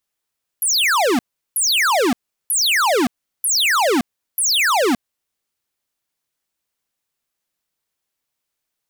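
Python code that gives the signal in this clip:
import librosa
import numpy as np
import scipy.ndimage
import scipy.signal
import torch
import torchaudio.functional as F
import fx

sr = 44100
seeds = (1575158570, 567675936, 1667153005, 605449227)

y = fx.laser_zaps(sr, level_db=-16.0, start_hz=12000.0, end_hz=220.0, length_s=0.57, wave='square', shots=5, gap_s=0.37)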